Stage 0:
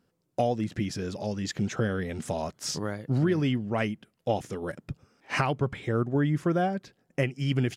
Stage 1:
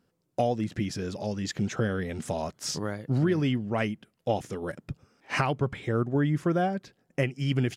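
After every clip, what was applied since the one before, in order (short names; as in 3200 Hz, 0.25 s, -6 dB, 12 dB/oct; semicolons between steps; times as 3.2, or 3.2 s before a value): nothing audible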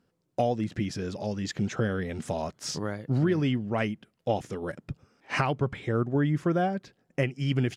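high shelf 9600 Hz -8 dB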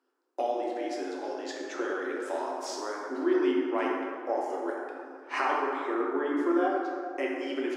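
rippled Chebyshev high-pass 260 Hz, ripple 9 dB; spectral repair 4.12–4.51, 1900–4200 Hz both; plate-style reverb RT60 2.3 s, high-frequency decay 0.45×, DRR -3 dB; gain +1 dB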